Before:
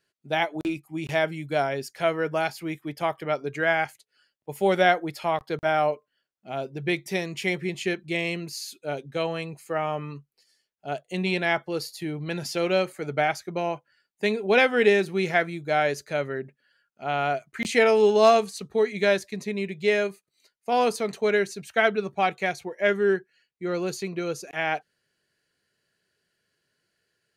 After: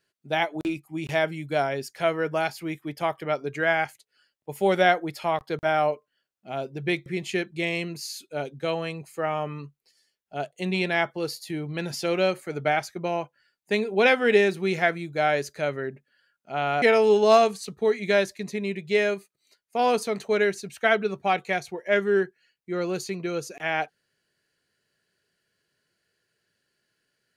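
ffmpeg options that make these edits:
-filter_complex "[0:a]asplit=3[s0][s1][s2];[s0]atrim=end=7.062[s3];[s1]atrim=start=7.578:end=17.342[s4];[s2]atrim=start=17.748[s5];[s3][s4]acrossfade=d=0.004:c1=hsin:c2=hsin[s6];[s6][s5]acrossfade=d=0.004:c1=hsin:c2=hsin"

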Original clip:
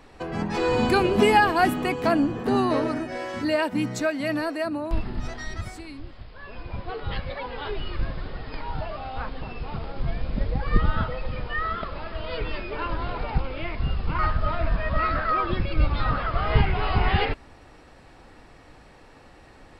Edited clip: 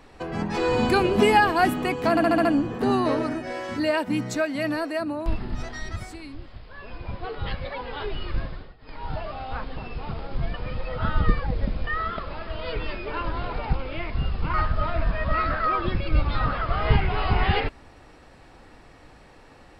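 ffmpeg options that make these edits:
-filter_complex "[0:a]asplit=10[s0][s1][s2][s3][s4][s5][s6][s7][s8][s9];[s0]atrim=end=2.172[s10];[s1]atrim=start=2.098:end=2.172[s11];[s2]atrim=start=2.098:end=2.172[s12];[s3]atrim=start=2.098:end=2.172[s13];[s4]atrim=start=2.098:end=2.172[s14];[s5]atrim=start=2.098:end=8.41,asetpts=PTS-STARTPTS,afade=t=out:st=5.972:d=0.34:silence=0.1[s15];[s6]atrim=start=8.41:end=8.43,asetpts=PTS-STARTPTS,volume=0.1[s16];[s7]atrim=start=8.43:end=10.192,asetpts=PTS-STARTPTS,afade=t=in:d=0.34:silence=0.1[s17];[s8]atrim=start=10.188:end=11.522,asetpts=PTS-STARTPTS,areverse[s18];[s9]atrim=start=11.518[s19];[s10][s11]acrossfade=d=0.004:c1=hsin:c2=hsin[s20];[s20][s12]acrossfade=d=0.004:c1=hsin:c2=hsin[s21];[s21][s13]acrossfade=d=0.004:c1=hsin:c2=hsin[s22];[s22][s14]acrossfade=d=0.004:c1=hsin:c2=hsin[s23];[s15][s16][s17]concat=n=3:v=0:a=1[s24];[s23][s24]acrossfade=d=0.004:c1=hsin:c2=hsin[s25];[s25][s18]acrossfade=d=0.004:c1=hsin:c2=hsin[s26];[s26][s19]acrossfade=d=0.004:c1=hsin:c2=hsin"

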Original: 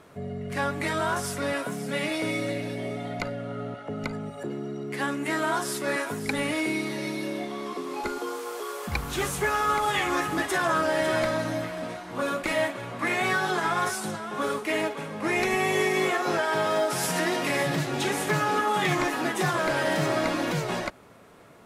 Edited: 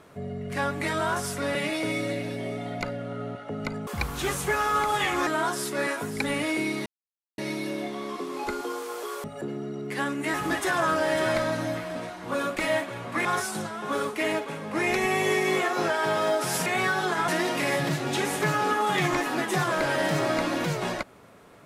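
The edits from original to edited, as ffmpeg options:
-filter_complex "[0:a]asplit=10[s0][s1][s2][s3][s4][s5][s6][s7][s8][s9];[s0]atrim=end=1.552[s10];[s1]atrim=start=1.938:end=4.262[s11];[s2]atrim=start=8.808:end=10.212[s12];[s3]atrim=start=5.358:end=6.95,asetpts=PTS-STARTPTS,afade=t=out:st=1.588:d=0.004:c=hsin,apad=pad_dur=0.52[s13];[s4]atrim=start=6.95:end=8.812,asetpts=PTS-STARTPTS,afade=t=in:d=0.004:c=hsin[s14];[s5]atrim=start=4.258:end=5.362[s15];[s6]atrim=start=10.208:end=13.122[s16];[s7]atrim=start=13.738:end=17.152[s17];[s8]atrim=start=13.118:end=13.742[s18];[s9]atrim=start=17.148[s19];[s10][s11]acrossfade=d=0.004:c1=hsin:c2=hsin[s20];[s20][s12]acrossfade=d=0.004:c1=hsin:c2=hsin[s21];[s13][s14]concat=n=2:v=0:a=1[s22];[s21][s22]acrossfade=d=0.004:c1=hsin:c2=hsin[s23];[s23][s15]acrossfade=d=0.004:c1=hsin:c2=hsin[s24];[s24][s16]acrossfade=d=0.004:c1=hsin:c2=hsin[s25];[s25][s17]acrossfade=d=0.004:c1=hsin:c2=hsin[s26];[s26][s18]acrossfade=d=0.004:c1=hsin:c2=hsin[s27];[s27][s19]acrossfade=d=0.004:c1=hsin:c2=hsin"

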